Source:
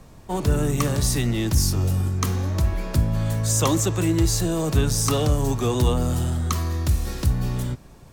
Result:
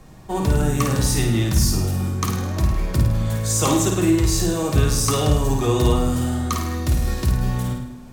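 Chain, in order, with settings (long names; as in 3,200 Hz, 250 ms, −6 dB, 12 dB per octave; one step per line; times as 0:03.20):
flutter between parallel walls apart 9 metres, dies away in 0.68 s
on a send at −3 dB: convolution reverb RT60 0.70 s, pre-delay 3 ms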